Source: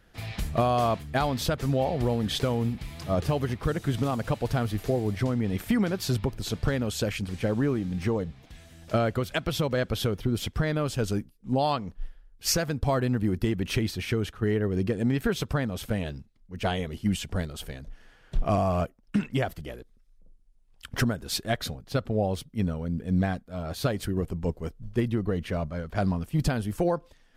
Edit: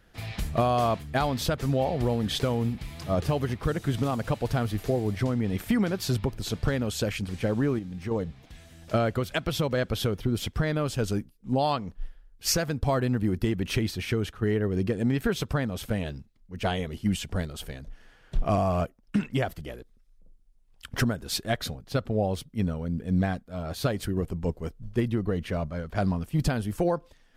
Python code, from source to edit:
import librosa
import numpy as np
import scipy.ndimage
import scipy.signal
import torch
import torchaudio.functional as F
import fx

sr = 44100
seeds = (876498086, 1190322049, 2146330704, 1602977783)

y = fx.edit(x, sr, fx.clip_gain(start_s=7.79, length_s=0.32, db=-6.5), tone=tone)